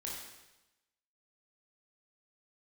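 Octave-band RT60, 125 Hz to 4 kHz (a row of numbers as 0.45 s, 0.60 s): 1.1 s, 1.0 s, 1.0 s, 1.0 s, 0.95 s, 1.0 s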